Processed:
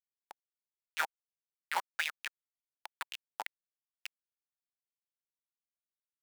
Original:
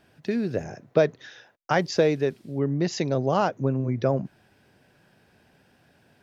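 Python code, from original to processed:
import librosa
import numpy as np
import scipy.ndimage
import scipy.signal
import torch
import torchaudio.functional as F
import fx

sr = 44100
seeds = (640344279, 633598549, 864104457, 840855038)

y = fx.spec_gate(x, sr, threshold_db=-20, keep='weak')
y = fx.peak_eq(y, sr, hz=80.0, db=8.0, octaves=0.73)
y = fx.schmitt(y, sr, flips_db=-29.0)
y = fx.peak_eq(y, sr, hz=1100.0, db=-6.0, octaves=0.36)
y = fx.filter_lfo_highpass(y, sr, shape='sine', hz=5.5, low_hz=850.0, high_hz=3000.0, q=5.6)
y = y * 10.0 ** (15.0 / 20.0)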